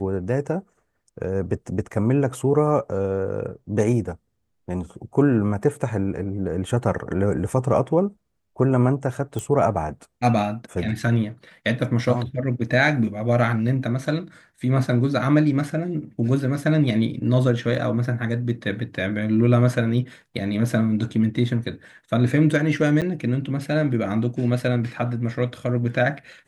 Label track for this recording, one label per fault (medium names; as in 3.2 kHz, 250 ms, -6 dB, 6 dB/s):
9.390000	9.390000	pop
23.010000	23.020000	dropout 7.8 ms